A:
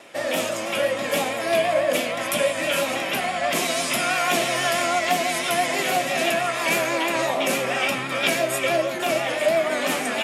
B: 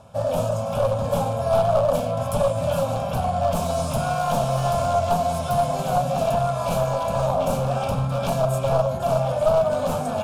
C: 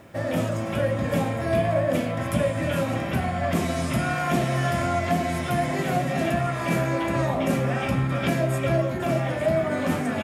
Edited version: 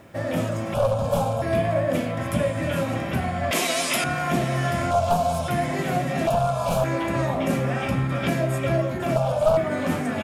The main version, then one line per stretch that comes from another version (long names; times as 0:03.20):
C
0:00.74–0:01.42: punch in from B
0:03.51–0:04.04: punch in from A
0:04.91–0:05.48: punch in from B
0:06.27–0:06.84: punch in from B
0:09.16–0:09.57: punch in from B